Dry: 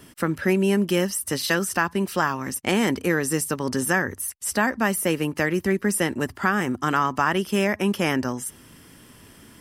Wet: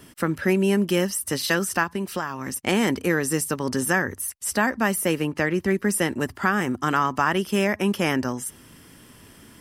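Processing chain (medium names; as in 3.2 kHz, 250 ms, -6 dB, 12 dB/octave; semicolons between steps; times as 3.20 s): 1.83–2.57 s: compression 5:1, threshold -24 dBFS, peak gain reduction 8 dB; 5.22–5.68 s: treble shelf 8.5 kHz -11.5 dB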